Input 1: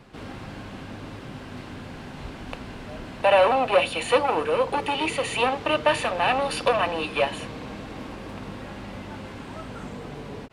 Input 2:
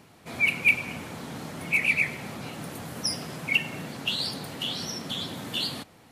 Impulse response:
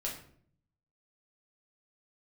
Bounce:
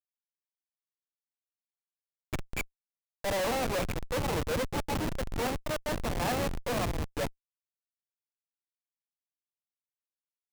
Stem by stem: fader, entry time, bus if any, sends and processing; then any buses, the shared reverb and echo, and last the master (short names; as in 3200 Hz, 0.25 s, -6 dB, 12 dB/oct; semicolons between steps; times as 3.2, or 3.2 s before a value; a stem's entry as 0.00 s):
-0.5 dB, 0.00 s, no send, dry
-5.0 dB, 1.90 s, send -18 dB, low shelf 98 Hz -7.5 dB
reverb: on, RT60 0.60 s, pre-delay 5 ms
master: bell 3200 Hz -14.5 dB 0.44 oct; Schmitt trigger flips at -23 dBFS; limiter -28 dBFS, peak gain reduction 7 dB